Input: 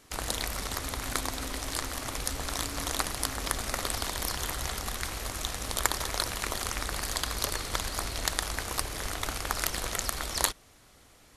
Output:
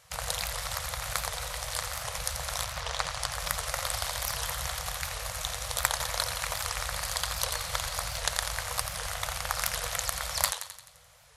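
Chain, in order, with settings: 2.64–3.31 LPF 4100 Hz -> 9100 Hz 12 dB/oct; FFT band-reject 180–470 Hz; HPF 46 Hz; on a send: thinning echo 86 ms, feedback 54%, high-pass 500 Hz, level -8 dB; on the sum: record warp 78 rpm, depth 160 cents

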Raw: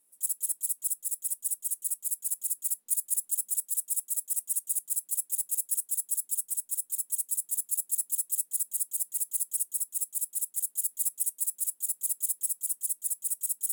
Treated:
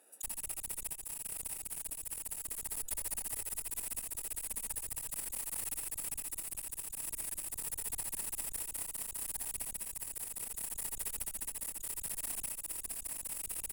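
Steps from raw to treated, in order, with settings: Wiener smoothing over 41 samples; HPF 980 Hz; one-sided clip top -32.5 dBFS; on a send: tapped delay 74/83/855 ms -12/-11/-11 dB; on the sum: backwards sustainer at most 22 dB/s; gain -6.5 dB

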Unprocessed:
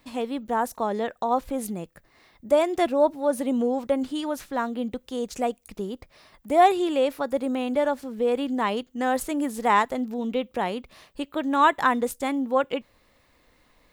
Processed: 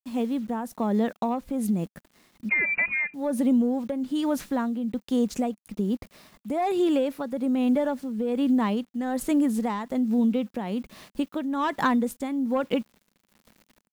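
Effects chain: soft clip -13 dBFS, distortion -17 dB; AGC gain up to 6 dB; bit-crush 8-bit; 2.49–3.14 inverted band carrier 2700 Hz; bell 210 Hz +12.5 dB 0.99 oct; compressor, threshold -15 dBFS, peak gain reduction 8.5 dB; tremolo triangle 1.2 Hz, depth 65%; gain -3.5 dB

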